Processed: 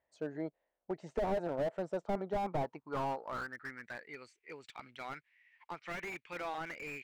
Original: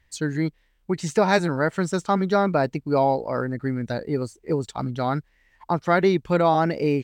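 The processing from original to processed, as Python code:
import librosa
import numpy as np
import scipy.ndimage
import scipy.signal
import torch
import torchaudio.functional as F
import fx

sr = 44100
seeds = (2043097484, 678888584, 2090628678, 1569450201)

y = fx.filter_sweep_bandpass(x, sr, from_hz=640.0, to_hz=2300.0, start_s=2.12, end_s=4.15, q=4.2)
y = fx.slew_limit(y, sr, full_power_hz=14.0)
y = F.gain(torch.from_numpy(y), 1.5).numpy()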